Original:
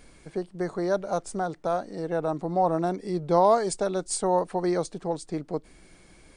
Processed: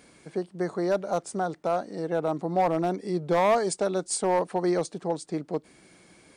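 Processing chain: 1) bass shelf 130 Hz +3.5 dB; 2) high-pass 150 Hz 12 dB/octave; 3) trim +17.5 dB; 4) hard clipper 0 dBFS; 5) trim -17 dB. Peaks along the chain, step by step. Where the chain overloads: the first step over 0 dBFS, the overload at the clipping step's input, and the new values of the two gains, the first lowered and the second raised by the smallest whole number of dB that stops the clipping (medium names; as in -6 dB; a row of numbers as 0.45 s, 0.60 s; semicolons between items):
-8.5 dBFS, -9.0 dBFS, +8.5 dBFS, 0.0 dBFS, -17.0 dBFS; step 3, 8.5 dB; step 3 +8.5 dB, step 5 -8 dB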